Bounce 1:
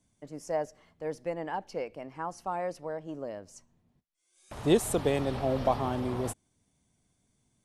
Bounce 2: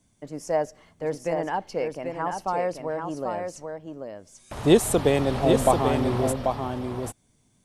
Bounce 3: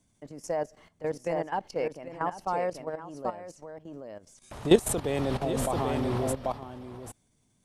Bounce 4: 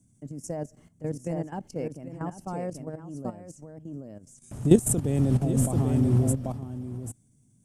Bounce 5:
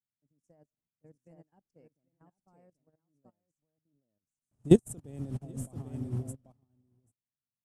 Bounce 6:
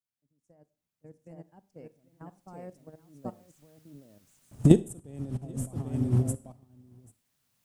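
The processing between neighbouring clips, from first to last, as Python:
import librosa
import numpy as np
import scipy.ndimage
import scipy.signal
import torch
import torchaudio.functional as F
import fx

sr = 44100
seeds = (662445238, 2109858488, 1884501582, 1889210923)

y1 = x + 10.0 ** (-5.5 / 20.0) * np.pad(x, (int(788 * sr / 1000.0), 0))[:len(x)]
y1 = y1 * librosa.db_to_amplitude(6.5)
y2 = fx.level_steps(y1, sr, step_db=14)
y3 = fx.graphic_eq(y2, sr, hz=(125, 250, 500, 1000, 2000, 4000, 8000), db=(11, 6, -4, -9, -6, -12, 8))
y4 = fx.upward_expand(y3, sr, threshold_db=-39.0, expansion=2.5)
y5 = fx.recorder_agc(y4, sr, target_db=-9.0, rise_db_per_s=8.3, max_gain_db=30)
y5 = fx.rev_schroeder(y5, sr, rt60_s=0.41, comb_ms=32, drr_db=17.0)
y5 = y5 * librosa.db_to_amplitude(-2.5)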